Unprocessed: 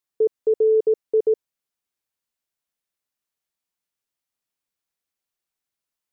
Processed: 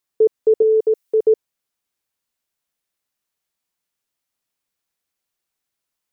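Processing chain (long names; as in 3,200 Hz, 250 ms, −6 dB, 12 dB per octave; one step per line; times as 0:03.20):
0:00.62–0:01.23: spectral tilt +2.5 dB per octave
level +5 dB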